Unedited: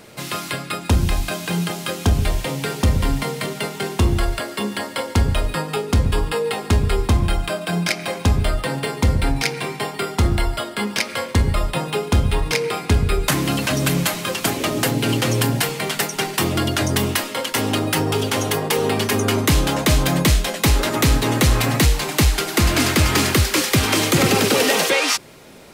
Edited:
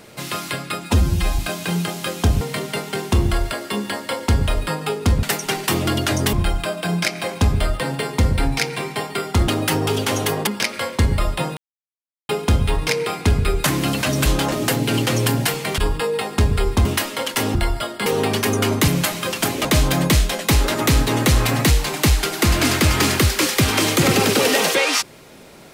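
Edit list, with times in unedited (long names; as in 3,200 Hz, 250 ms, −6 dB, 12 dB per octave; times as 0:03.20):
0:00.85–0:01.21: time-stretch 1.5×
0:02.23–0:03.28: remove
0:06.10–0:07.17: swap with 0:15.93–0:17.03
0:10.32–0:10.83: swap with 0:17.73–0:18.72
0:11.93: splice in silence 0.72 s
0:13.90–0:14.67: swap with 0:19.54–0:19.80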